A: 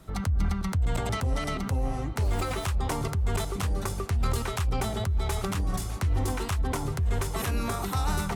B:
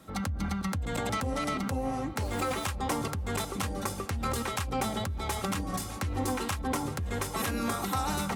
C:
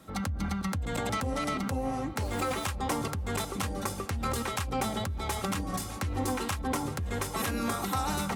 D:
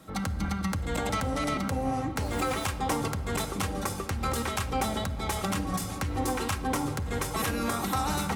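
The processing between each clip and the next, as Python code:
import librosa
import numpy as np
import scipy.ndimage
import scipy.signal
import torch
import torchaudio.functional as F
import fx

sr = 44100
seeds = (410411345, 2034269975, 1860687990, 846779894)

y1 = scipy.signal.sosfilt(scipy.signal.butter(2, 110.0, 'highpass', fs=sr, output='sos'), x)
y1 = y1 + 0.43 * np.pad(y1, (int(3.7 * sr / 1000.0), 0))[:len(y1)]
y2 = y1
y3 = fx.room_shoebox(y2, sr, seeds[0], volume_m3=1700.0, walls='mixed', distance_m=0.58)
y3 = F.gain(torch.from_numpy(y3), 1.5).numpy()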